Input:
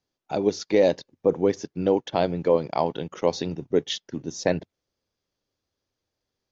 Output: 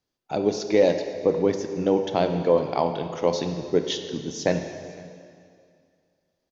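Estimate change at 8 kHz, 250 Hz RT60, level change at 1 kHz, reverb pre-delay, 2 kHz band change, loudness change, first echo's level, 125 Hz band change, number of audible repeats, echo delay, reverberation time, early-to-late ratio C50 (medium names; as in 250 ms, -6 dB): no reading, 2.4 s, +1.0 dB, 5 ms, +1.0 dB, +1.0 dB, -23.5 dB, +1.5 dB, 1, 506 ms, 2.3 s, 7.0 dB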